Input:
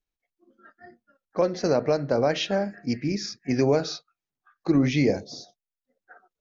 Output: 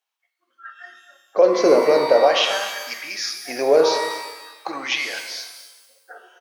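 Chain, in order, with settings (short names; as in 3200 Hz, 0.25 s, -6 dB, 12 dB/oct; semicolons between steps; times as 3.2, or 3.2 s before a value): bell 3000 Hz +5.5 dB 0.4 oct; in parallel at -3 dB: negative-ratio compressor -27 dBFS; on the sum: LFO high-pass sine 0.43 Hz 380–1500 Hz; on a send: echo 0.252 s -15.5 dB; on the sum: shimmer reverb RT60 1.2 s, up +12 st, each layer -8 dB, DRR 5.5 dB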